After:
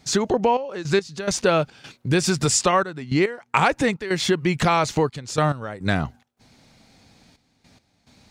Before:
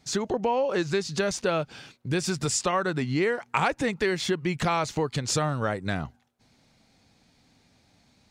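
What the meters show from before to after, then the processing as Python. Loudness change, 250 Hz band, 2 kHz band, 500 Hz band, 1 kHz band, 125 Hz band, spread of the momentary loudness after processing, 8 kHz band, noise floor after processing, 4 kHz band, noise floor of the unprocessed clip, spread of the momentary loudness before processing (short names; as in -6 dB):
+5.0 dB, +5.5 dB, +4.5 dB, +4.5 dB, +6.0 dB, +5.0 dB, 6 LU, +5.5 dB, -67 dBFS, +5.0 dB, -64 dBFS, 5 LU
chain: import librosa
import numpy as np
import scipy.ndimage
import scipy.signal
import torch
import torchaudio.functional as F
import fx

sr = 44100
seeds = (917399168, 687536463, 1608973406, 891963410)

p1 = fx.rider(x, sr, range_db=10, speed_s=2.0)
p2 = x + F.gain(torch.from_numpy(p1), 0.5).numpy()
y = fx.step_gate(p2, sr, bpm=106, pattern='xxxx..x..xxx.xxx', floor_db=-12.0, edge_ms=4.5)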